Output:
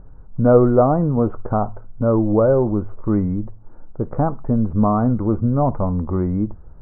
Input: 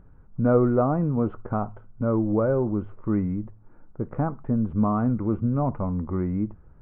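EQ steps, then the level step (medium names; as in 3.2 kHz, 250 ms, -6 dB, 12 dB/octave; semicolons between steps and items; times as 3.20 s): low-pass 1.7 kHz 12 dB/octave; bass shelf 82 Hz +11 dB; peaking EQ 670 Hz +7 dB 1.9 oct; +2.0 dB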